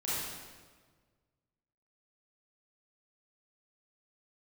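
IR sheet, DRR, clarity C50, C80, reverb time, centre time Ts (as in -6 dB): -10.0 dB, -4.5 dB, -0.5 dB, 1.5 s, 0.116 s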